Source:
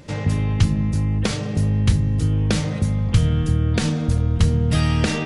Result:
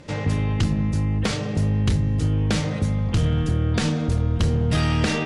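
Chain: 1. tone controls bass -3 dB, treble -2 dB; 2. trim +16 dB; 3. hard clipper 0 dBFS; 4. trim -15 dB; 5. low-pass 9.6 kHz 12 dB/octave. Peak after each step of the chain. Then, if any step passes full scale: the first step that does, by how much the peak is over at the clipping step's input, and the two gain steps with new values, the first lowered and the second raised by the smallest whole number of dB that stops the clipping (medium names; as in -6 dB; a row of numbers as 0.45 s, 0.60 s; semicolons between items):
-6.0 dBFS, +10.0 dBFS, 0.0 dBFS, -15.0 dBFS, -14.5 dBFS; step 2, 10.0 dB; step 2 +6 dB, step 4 -5 dB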